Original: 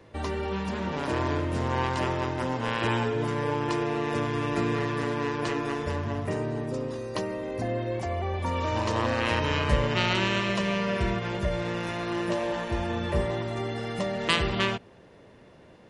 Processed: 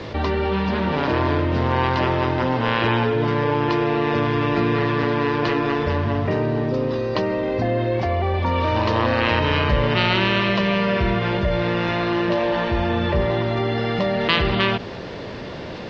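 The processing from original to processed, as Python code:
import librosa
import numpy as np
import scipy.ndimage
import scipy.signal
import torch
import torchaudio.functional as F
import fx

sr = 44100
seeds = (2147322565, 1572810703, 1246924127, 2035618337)

p1 = fx.quant_dither(x, sr, seeds[0], bits=8, dither='triangular')
p2 = x + (p1 * 10.0 ** (-7.5 / 20.0))
p3 = scipy.signal.sosfilt(scipy.signal.butter(6, 4800.0, 'lowpass', fs=sr, output='sos'), p2)
y = fx.env_flatten(p3, sr, amount_pct=50)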